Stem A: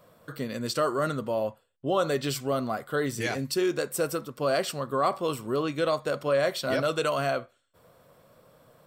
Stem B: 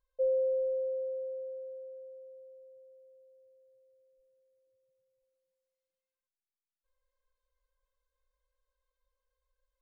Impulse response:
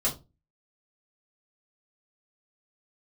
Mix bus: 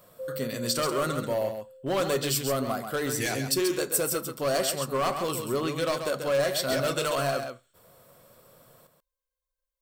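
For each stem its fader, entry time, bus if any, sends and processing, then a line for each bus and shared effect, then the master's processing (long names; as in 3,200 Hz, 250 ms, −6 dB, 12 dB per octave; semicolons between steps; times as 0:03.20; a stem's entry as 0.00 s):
−1.5 dB, 0.00 s, send −19.5 dB, echo send −6.5 dB, hard clipping −22.5 dBFS, distortion −14 dB
−7.5 dB, 0.00 s, no send, no echo send, no processing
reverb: on, RT60 0.25 s, pre-delay 3 ms
echo: single-tap delay 135 ms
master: high-shelf EQ 5,400 Hz +11.5 dB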